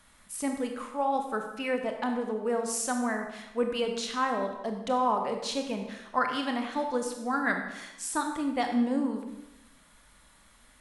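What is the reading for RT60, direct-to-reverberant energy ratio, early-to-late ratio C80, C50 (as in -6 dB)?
0.95 s, 4.0 dB, 7.5 dB, 6.0 dB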